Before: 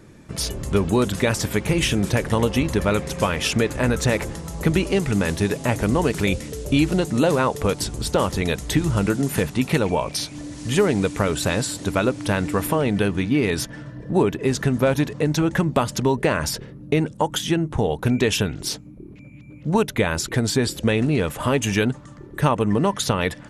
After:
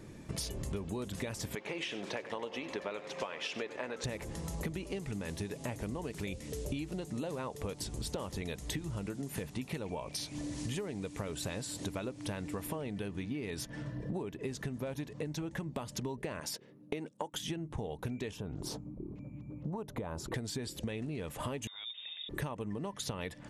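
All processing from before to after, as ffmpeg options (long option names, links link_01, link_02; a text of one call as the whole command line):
ffmpeg -i in.wav -filter_complex "[0:a]asettb=1/sr,asplit=3[link_01][link_02][link_03];[link_01]atrim=end=1.554[link_04];[link_02]atrim=start=1.55:end=4.04,asetpts=PTS-STARTPTS,afade=type=in:duration=0.004:curve=qsin,afade=type=out:start_time=2.486:duration=0.004:curve=qsin,highpass=440,lowpass=4000,aecho=1:1:95:0.188,atrim=end_sample=109809[link_05];[link_03]atrim=start=4.036[link_06];[link_04][link_05]acrossfade=duration=0.004:curve1=hsin:curve2=qsin[link_07];[link_07][link_06]acrossfade=duration=0.004:curve1=qsin:curve2=hsin,asettb=1/sr,asplit=3[link_08][link_09][link_10];[link_08]atrim=end=16.404[link_11];[link_09]atrim=start=16.4:end=17.34,asetpts=PTS-STARTPTS,afade=type=in:duration=0.004:curve=qsin,afade=type=out:start_time=0.936:duration=0.004:curve=qsin,agate=range=-10dB:threshold=-30dB:ratio=16:release=100:detection=peak,highpass=230[link_12];[link_10]atrim=start=17.336[link_13];[link_11][link_12]acrossfade=duration=0.004:curve1=hsin:curve2=qsin[link_14];[link_14][link_13]acrossfade=duration=0.004:curve1=qsin:curve2=hsin,asettb=1/sr,asplit=3[link_15][link_16][link_17];[link_15]atrim=end=18.314[link_18];[link_16]atrim=start=18.31:end=20.34,asetpts=PTS-STARTPTS,afade=type=in:duration=0.004:curve=qsin,afade=type=out:start_time=2.026:duration=0.004:curve=qsin,highshelf=frequency=1500:width_type=q:width=1.5:gain=-10.5,acompressor=threshold=-26dB:ratio=2:attack=3.2:release=140:knee=1:detection=peak[link_19];[link_17]atrim=start=20.336[link_20];[link_18][link_19]acrossfade=duration=0.004:curve1=hsin:curve2=qsin[link_21];[link_21][link_20]acrossfade=duration=0.004:curve1=qsin:curve2=hsin,asettb=1/sr,asplit=3[link_22][link_23][link_24];[link_22]atrim=end=21.674[link_25];[link_23]atrim=start=21.67:end=22.29,asetpts=PTS-STARTPTS,afade=type=in:duration=0.004:curve=qsin,afade=type=out:start_time=0.616:duration=0.004:curve=qsin,acompressor=threshold=-34dB:ratio=8:attack=3.2:release=140:knee=1:detection=peak,lowpass=frequency=3200:width_type=q:width=0.5098,lowpass=frequency=3200:width_type=q:width=0.6013,lowpass=frequency=3200:width_type=q:width=0.9,lowpass=frequency=3200:width_type=q:width=2.563,afreqshift=-3800[link_26];[link_24]atrim=start=22.286[link_27];[link_25][link_26]acrossfade=duration=0.004:curve1=hsin:curve2=qsin[link_28];[link_28][link_27]acrossfade=duration=0.004:curve1=qsin:curve2=hsin,equalizer=frequency=1400:width=3.2:gain=-5,acompressor=threshold=-32dB:ratio=12,volume=-3dB" out.wav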